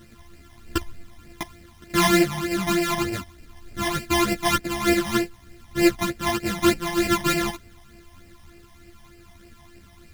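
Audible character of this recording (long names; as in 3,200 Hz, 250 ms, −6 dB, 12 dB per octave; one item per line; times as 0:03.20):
a buzz of ramps at a fixed pitch in blocks of 128 samples
phaser sweep stages 12, 3.3 Hz, lowest notch 430–1,200 Hz
a quantiser's noise floor 10 bits, dither none
a shimmering, thickened sound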